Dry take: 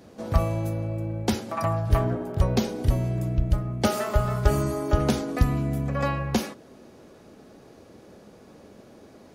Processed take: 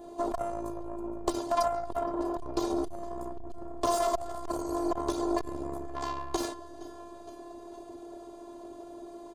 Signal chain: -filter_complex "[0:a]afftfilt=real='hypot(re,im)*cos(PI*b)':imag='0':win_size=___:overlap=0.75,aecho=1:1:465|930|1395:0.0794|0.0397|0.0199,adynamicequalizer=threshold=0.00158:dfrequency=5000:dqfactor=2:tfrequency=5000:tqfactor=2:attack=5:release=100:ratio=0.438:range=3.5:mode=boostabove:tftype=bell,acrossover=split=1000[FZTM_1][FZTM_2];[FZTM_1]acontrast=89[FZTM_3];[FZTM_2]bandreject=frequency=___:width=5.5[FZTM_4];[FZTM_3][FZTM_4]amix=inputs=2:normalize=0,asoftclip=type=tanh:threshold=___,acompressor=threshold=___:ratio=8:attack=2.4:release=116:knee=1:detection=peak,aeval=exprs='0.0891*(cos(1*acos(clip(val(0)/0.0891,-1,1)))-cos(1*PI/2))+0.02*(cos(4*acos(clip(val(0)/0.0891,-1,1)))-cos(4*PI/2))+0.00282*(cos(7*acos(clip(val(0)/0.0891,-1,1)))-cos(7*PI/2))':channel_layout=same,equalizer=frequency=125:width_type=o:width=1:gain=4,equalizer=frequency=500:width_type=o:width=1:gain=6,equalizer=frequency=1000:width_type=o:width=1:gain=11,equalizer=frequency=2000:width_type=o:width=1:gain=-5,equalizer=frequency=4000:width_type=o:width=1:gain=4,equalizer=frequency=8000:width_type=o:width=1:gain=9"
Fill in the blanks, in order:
512, 5400, -17dB, -27dB